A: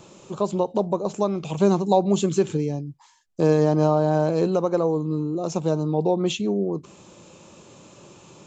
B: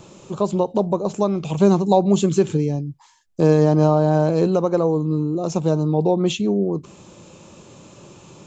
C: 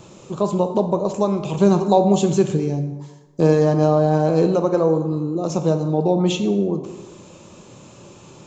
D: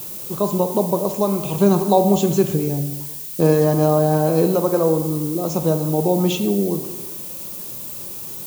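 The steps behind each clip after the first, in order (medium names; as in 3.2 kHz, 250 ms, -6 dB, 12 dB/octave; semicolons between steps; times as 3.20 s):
bass shelf 190 Hz +5.5 dB; trim +2 dB
plate-style reverb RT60 1.2 s, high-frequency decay 0.6×, DRR 6.5 dB
added noise violet -32 dBFS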